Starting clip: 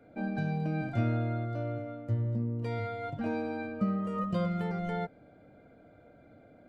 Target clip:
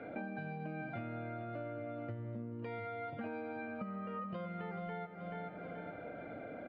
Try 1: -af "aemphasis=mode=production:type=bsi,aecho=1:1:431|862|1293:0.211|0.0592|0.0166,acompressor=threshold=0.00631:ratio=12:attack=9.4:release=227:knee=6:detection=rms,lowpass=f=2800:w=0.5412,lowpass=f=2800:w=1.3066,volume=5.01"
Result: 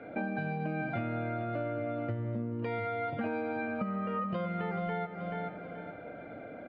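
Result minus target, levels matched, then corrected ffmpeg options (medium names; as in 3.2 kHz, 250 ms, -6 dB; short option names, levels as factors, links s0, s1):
compression: peak gain reduction -8 dB
-af "aemphasis=mode=production:type=bsi,aecho=1:1:431|862|1293:0.211|0.0592|0.0166,acompressor=threshold=0.00224:ratio=12:attack=9.4:release=227:knee=6:detection=rms,lowpass=f=2800:w=0.5412,lowpass=f=2800:w=1.3066,volume=5.01"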